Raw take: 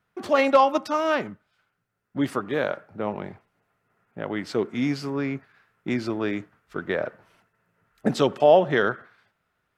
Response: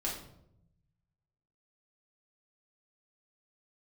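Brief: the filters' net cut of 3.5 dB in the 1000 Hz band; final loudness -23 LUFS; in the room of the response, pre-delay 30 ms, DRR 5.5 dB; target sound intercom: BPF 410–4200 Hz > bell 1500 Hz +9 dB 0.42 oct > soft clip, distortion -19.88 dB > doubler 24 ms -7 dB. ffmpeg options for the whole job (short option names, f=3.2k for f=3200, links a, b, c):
-filter_complex "[0:a]equalizer=f=1k:t=o:g=-7,asplit=2[a][b];[1:a]atrim=start_sample=2205,adelay=30[c];[b][c]afir=irnorm=-1:irlink=0,volume=-9dB[d];[a][d]amix=inputs=2:normalize=0,highpass=410,lowpass=4.2k,equalizer=f=1.5k:t=o:w=0.42:g=9,asoftclip=threshold=-10.5dB,asplit=2[e][f];[f]adelay=24,volume=-7dB[g];[e][g]amix=inputs=2:normalize=0,volume=3.5dB"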